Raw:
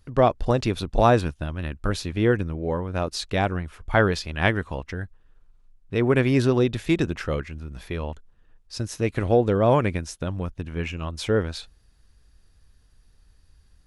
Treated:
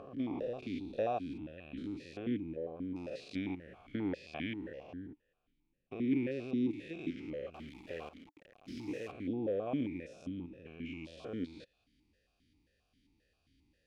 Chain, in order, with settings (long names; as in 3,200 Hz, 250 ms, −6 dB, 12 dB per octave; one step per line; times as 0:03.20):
spectrum averaged block by block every 200 ms
parametric band 990 Hz −13.5 dB 2 octaves
downward compressor 1.5 to 1, threshold −52 dBFS, peak gain reduction 11.5 dB
0:07.54–0:09.12: log-companded quantiser 4 bits
formant filter that steps through the vowels 7.5 Hz
level +14 dB